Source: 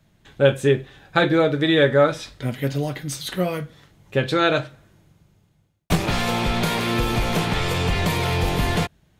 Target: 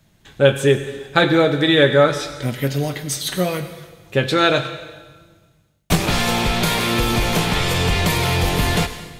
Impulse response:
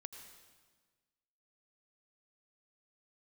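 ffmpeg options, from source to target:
-filter_complex "[0:a]asplit=2[a][b];[1:a]atrim=start_sample=2205,highshelf=f=2.9k:g=9.5[c];[b][c]afir=irnorm=-1:irlink=0,volume=4.5dB[d];[a][d]amix=inputs=2:normalize=0,volume=-3dB"

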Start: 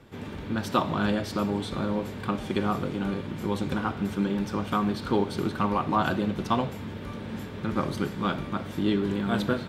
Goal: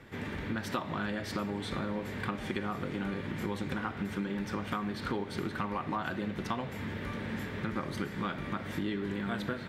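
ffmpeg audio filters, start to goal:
-af "equalizer=f=1.9k:t=o:w=0.62:g=9.5,acompressor=threshold=-30dB:ratio=6,volume=-1dB"

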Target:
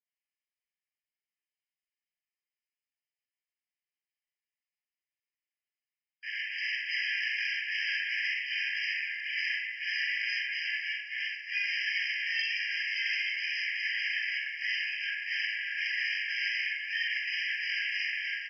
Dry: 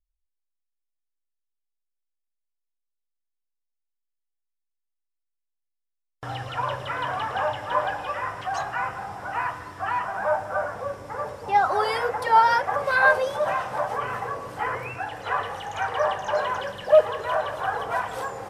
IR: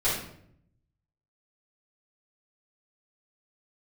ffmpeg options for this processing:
-filter_complex "[0:a]acrossover=split=210|2200[a][b][c];[c]acompressor=threshold=-51dB:ratio=6[d];[a][b][d]amix=inputs=3:normalize=0,volume=20.5dB,asoftclip=hard,volume=-20.5dB,aeval=exprs='0.1*(cos(1*acos(clip(val(0)/0.1,-1,1)))-cos(1*PI/2))+0.0398*(cos(6*acos(clip(val(0)/0.1,-1,1)))-cos(6*PI/2))':c=same,asplit=2[e][f];[f]aeval=exprs='0.0178*(abs(mod(val(0)/0.0178+3,4)-2)-1)':c=same,volume=-4dB[g];[e][g]amix=inputs=2:normalize=0,asplit=2[h][i];[i]adelay=44,volume=-7dB[j];[h][j]amix=inputs=2:normalize=0[k];[1:a]atrim=start_sample=2205[l];[k][l]afir=irnorm=-1:irlink=0,aresample=11025,aresample=44100,afftfilt=real='re*eq(mod(floor(b*sr/1024/1600),2),1)':imag='im*eq(mod(floor(b*sr/1024/1600),2),1)':win_size=1024:overlap=0.75,volume=-8dB"

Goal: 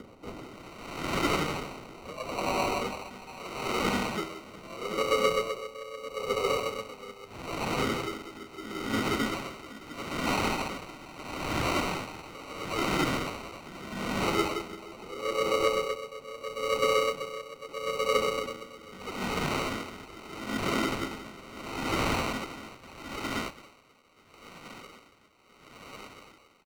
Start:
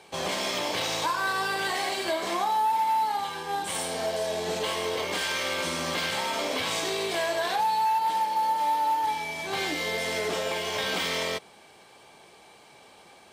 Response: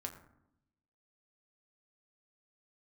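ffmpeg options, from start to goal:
-filter_complex "[0:a]aphaser=in_gain=1:out_gain=1:delay=4.7:decay=0.57:speed=1.9:type=triangular,asetrate=22050,aresample=44100,aecho=1:1:102|734:0.126|0.422,asplit=3[a][b][c];[b]asetrate=52444,aresample=44100,atempo=0.840896,volume=-4dB[d];[c]asetrate=55563,aresample=44100,atempo=0.793701,volume=-2dB[e];[a][d][e]amix=inputs=3:normalize=0,asplit=2[f][g];[g]acompressor=threshold=-33dB:ratio=6,volume=-1.5dB[h];[f][h]amix=inputs=2:normalize=0,equalizer=f=1k:w=3.9:g=-12,acrusher=samples=26:mix=1:aa=0.000001,acrossover=split=490|1100[i][j][k];[k]dynaudnorm=f=170:g=7:m=13dB[l];[i][j][l]amix=inputs=3:normalize=0,asoftclip=type=tanh:threshold=-8dB,lowpass=f=3.1k:p=1,aeval=exprs='val(0)*pow(10,-18*(0.5-0.5*cos(2*PI*0.77*n/s))/20)':c=same,volume=-5.5dB"

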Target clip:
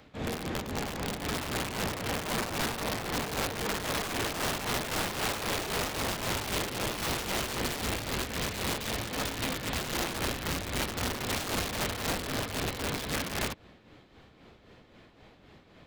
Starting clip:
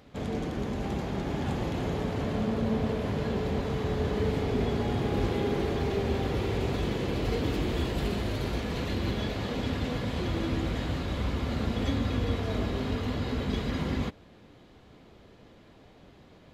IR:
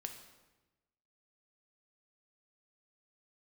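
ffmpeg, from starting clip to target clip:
-filter_complex "[0:a]acrossover=split=180|1200|3400[a][b][c][d];[c]acontrast=37[e];[a][b][e][d]amix=inputs=4:normalize=0,aeval=exprs='(mod(16.8*val(0)+1,2)-1)/16.8':c=same,asetrate=45938,aresample=44100,tremolo=f=3.8:d=0.54"

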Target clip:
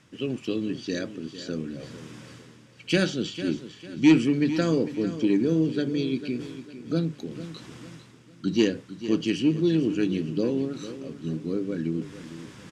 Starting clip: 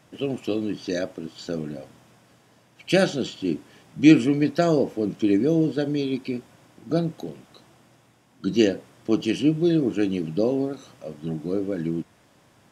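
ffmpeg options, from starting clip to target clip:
-af "lowpass=8k,equalizer=f=700:w=1.7:g=-13,bandreject=f=50:t=h:w=6,bandreject=f=100:t=h:w=6,bandreject=f=150:t=h:w=6,areverse,acompressor=mode=upward:threshold=-34dB:ratio=2.5,areverse,asoftclip=type=tanh:threshold=-8dB,aecho=1:1:450|900|1350|1800:0.224|0.0828|0.0306|0.0113"

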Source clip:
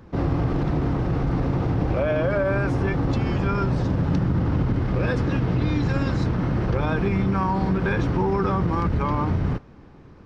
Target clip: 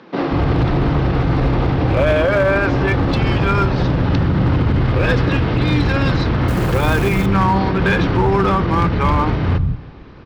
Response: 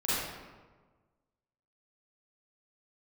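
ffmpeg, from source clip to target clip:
-filter_complex "[0:a]lowpass=f=4.2k:w=0.5412,lowpass=f=4.2k:w=1.3066,highshelf=f=2.8k:g=11.5,acrossover=split=190[a][b];[a]adelay=180[c];[c][b]amix=inputs=2:normalize=0,asplit=2[d][e];[e]aeval=exprs='0.126*(abs(mod(val(0)/0.126+3,4)-2)-1)':c=same,volume=-4.5dB[f];[d][f]amix=inputs=2:normalize=0,asettb=1/sr,asplit=3[g][h][i];[g]atrim=end=6.484[j];[h]atrim=start=6.48:end=7.26,asetpts=PTS-STARTPTS,afade=t=in:d=0.004:c=qsin,afade=t=out:st=0.776:d=0.004:c=qsin,acrusher=bits=5:mode=log:mix=0:aa=0.000001[k];[i]atrim=start=7.256[l];[j][k]acrossfade=d=0.004:c1=hsin:c2=qsin[m];[m][l]acrossfade=d=0.004:c1=qsin:c2=hsin,asplit=2[n][o];[1:a]atrim=start_sample=2205,asetrate=42777,aresample=44100[p];[o][p]afir=irnorm=-1:irlink=0,volume=-28dB[q];[n][q]amix=inputs=2:normalize=0,volume=3.5dB"

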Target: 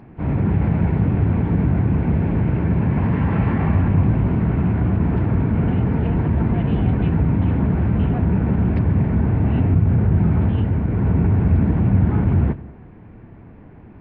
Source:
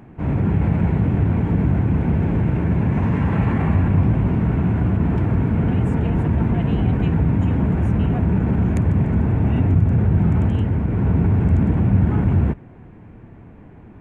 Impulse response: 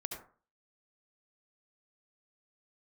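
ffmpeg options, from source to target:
-filter_complex "[0:a]asplit=2[a][b];[1:a]atrim=start_sample=2205,adelay=94[c];[b][c]afir=irnorm=-1:irlink=0,volume=-17.5dB[d];[a][d]amix=inputs=2:normalize=0" -ar 11025 -c:a nellymoser

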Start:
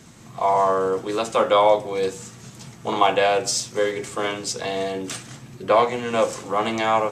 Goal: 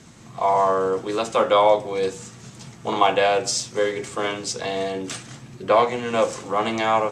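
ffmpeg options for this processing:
-af "lowpass=9.5k"

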